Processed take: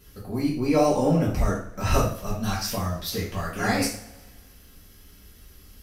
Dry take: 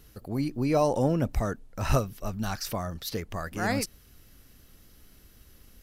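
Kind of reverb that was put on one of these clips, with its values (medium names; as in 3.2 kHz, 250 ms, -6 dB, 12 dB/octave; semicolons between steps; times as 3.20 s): two-slope reverb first 0.46 s, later 1.7 s, from -22 dB, DRR -7 dB; trim -3 dB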